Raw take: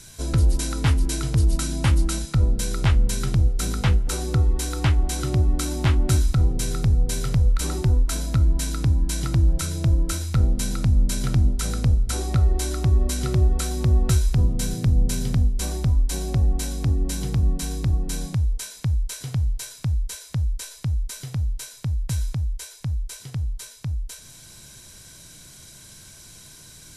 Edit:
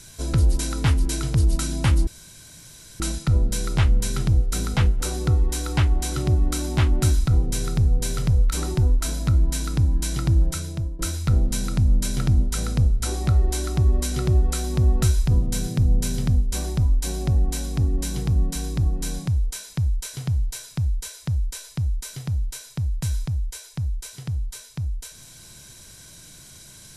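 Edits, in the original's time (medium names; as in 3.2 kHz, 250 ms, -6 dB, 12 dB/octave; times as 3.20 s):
2.07 s: insert room tone 0.93 s
9.51–10.06 s: fade out, to -16.5 dB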